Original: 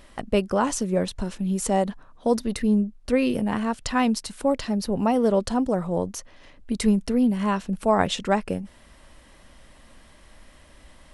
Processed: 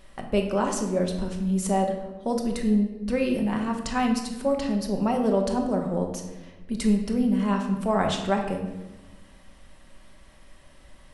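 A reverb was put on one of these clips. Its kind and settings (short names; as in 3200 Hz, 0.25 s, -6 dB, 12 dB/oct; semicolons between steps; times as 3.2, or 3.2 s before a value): shoebox room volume 630 m³, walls mixed, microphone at 1.1 m; gain -4.5 dB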